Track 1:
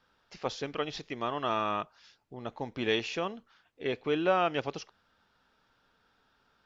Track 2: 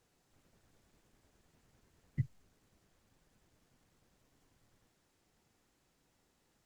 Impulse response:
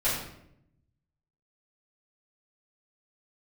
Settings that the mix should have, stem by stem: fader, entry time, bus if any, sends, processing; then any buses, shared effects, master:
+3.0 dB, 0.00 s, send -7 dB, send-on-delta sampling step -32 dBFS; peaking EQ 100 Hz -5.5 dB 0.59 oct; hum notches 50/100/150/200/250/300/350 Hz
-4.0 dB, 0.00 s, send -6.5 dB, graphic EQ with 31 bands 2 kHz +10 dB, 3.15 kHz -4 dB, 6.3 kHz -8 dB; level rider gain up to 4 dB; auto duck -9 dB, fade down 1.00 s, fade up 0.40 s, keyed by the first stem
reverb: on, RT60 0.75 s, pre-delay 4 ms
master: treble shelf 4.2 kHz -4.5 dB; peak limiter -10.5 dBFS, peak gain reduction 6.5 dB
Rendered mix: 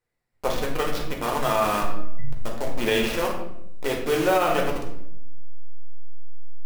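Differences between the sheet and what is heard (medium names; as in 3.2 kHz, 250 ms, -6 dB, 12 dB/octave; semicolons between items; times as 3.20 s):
stem 2 -4.0 dB -> -13.5 dB; master: missing treble shelf 4.2 kHz -4.5 dB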